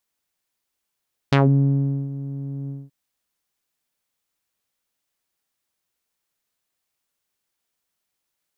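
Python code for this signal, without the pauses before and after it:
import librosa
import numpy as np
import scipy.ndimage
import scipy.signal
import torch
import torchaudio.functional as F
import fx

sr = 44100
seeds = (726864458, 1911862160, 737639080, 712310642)

y = fx.sub_voice(sr, note=49, wave='saw', cutoff_hz=230.0, q=1.7, env_oct=4.5, env_s=0.16, attack_ms=6.2, decay_s=0.76, sustain_db=-16.0, release_s=0.21, note_s=1.37, slope=12)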